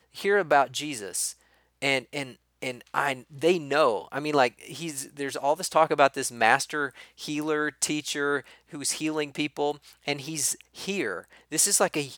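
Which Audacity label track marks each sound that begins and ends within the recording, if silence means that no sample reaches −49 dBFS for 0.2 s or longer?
1.820000	2.360000	sound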